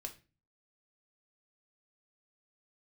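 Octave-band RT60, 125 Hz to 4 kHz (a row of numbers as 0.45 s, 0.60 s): 0.60 s, 0.50 s, 0.35 s, 0.30 s, 0.30 s, 0.30 s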